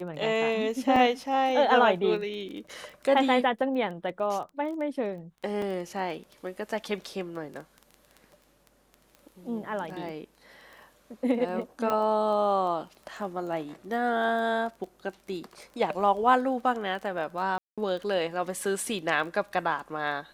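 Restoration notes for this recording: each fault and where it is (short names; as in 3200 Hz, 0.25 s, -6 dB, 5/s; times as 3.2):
crackle 11/s -36 dBFS
0.96 gap 2.6 ms
5.62 gap 2.1 ms
11.9 pop -16 dBFS
17.58–17.78 gap 0.196 s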